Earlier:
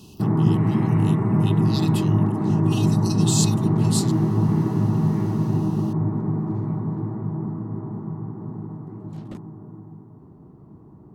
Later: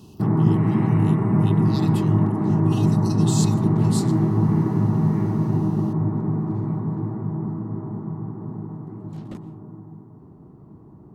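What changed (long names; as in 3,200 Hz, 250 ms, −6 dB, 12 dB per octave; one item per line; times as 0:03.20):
speech −6.0 dB
reverb: on, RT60 0.45 s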